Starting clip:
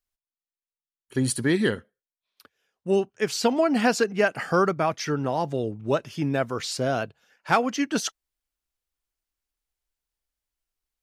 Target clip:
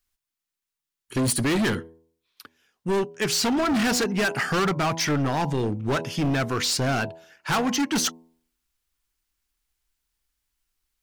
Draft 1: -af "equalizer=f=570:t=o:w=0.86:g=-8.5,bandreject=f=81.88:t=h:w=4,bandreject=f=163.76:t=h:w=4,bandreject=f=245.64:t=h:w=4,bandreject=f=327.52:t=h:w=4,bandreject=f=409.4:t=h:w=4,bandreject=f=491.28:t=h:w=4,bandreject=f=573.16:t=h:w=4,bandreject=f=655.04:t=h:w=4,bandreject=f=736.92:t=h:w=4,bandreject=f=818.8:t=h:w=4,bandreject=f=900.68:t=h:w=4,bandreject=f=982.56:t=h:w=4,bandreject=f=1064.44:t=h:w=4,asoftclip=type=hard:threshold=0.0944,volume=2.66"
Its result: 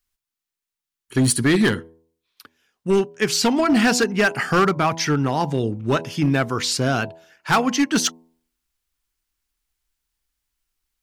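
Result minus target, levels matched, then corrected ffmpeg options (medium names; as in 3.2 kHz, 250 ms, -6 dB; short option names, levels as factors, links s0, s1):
hard clipper: distortion -8 dB
-af "equalizer=f=570:t=o:w=0.86:g=-8.5,bandreject=f=81.88:t=h:w=4,bandreject=f=163.76:t=h:w=4,bandreject=f=245.64:t=h:w=4,bandreject=f=327.52:t=h:w=4,bandreject=f=409.4:t=h:w=4,bandreject=f=491.28:t=h:w=4,bandreject=f=573.16:t=h:w=4,bandreject=f=655.04:t=h:w=4,bandreject=f=736.92:t=h:w=4,bandreject=f=818.8:t=h:w=4,bandreject=f=900.68:t=h:w=4,bandreject=f=982.56:t=h:w=4,bandreject=f=1064.44:t=h:w=4,asoftclip=type=hard:threshold=0.0355,volume=2.66"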